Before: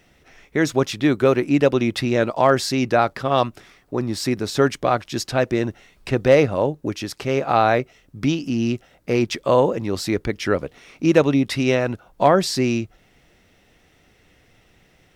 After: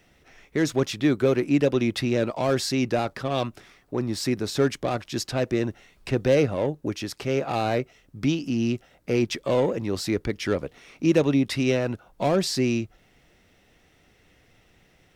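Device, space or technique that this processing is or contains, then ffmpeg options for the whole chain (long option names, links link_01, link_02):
one-band saturation: -filter_complex "[0:a]acrossover=split=540|2500[link_01][link_02][link_03];[link_02]asoftclip=type=tanh:threshold=-26dB[link_04];[link_01][link_04][link_03]amix=inputs=3:normalize=0,volume=-3dB"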